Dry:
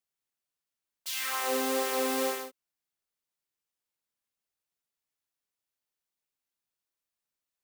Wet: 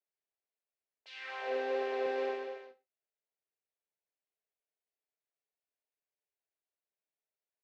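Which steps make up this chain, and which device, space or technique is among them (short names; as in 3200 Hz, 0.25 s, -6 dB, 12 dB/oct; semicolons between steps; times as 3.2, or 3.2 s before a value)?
phone earpiece (speaker cabinet 380–3400 Hz, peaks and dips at 420 Hz +9 dB, 640 Hz +8 dB, 1200 Hz -9 dB, 3300 Hz -6 dB); 2.06–2.48 HPF 160 Hz 12 dB/oct; echo 0.232 s -7.5 dB; non-linear reverb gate 0.14 s falling, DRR 11.5 dB; gain -6.5 dB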